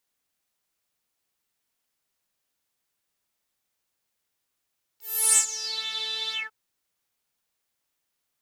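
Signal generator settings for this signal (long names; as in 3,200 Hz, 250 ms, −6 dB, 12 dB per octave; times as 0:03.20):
subtractive patch with pulse-width modulation A4, sub −13.5 dB, filter bandpass, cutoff 1,400 Hz, Q 11, filter envelope 3.5 octaves, filter decay 0.81 s, attack 357 ms, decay 0.10 s, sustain −18 dB, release 0.16 s, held 1.34 s, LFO 2 Hz, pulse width 25%, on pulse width 16%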